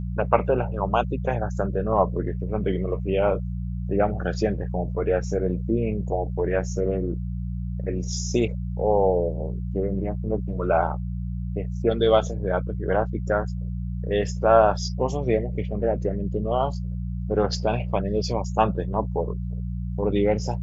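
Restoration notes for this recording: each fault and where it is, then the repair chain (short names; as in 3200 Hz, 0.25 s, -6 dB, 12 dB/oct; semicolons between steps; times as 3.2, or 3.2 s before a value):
hum 60 Hz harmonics 3 -29 dBFS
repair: de-hum 60 Hz, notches 3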